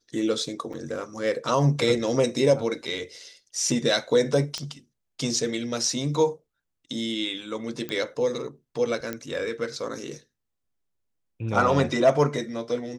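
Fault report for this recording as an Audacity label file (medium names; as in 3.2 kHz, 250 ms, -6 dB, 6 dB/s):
0.730000	0.740000	dropout 5.1 ms
4.580000	4.580000	pop -16 dBFS
7.890000	7.890000	pop -17 dBFS
9.130000	9.130000	pop -16 dBFS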